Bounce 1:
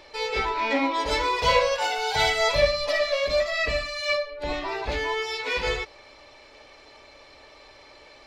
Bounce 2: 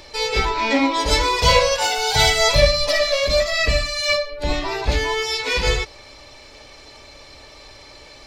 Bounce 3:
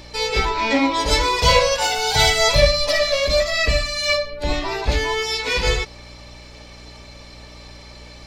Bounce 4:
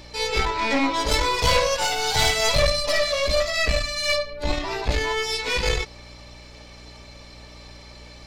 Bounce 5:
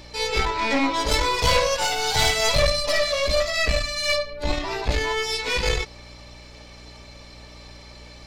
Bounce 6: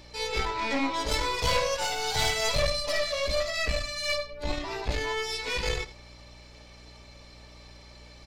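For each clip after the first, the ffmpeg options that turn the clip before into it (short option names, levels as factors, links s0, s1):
-af "bass=f=250:g=9,treble=f=4000:g=10,volume=1.58"
-af "aeval=exprs='val(0)+0.00794*(sin(2*PI*60*n/s)+sin(2*PI*2*60*n/s)/2+sin(2*PI*3*60*n/s)/3+sin(2*PI*4*60*n/s)/4+sin(2*PI*5*60*n/s)/5)':c=same"
-af "aeval=exprs='(tanh(5.01*val(0)+0.6)-tanh(0.6))/5.01':c=same"
-af anull
-af "aecho=1:1:82:0.168,volume=0.473"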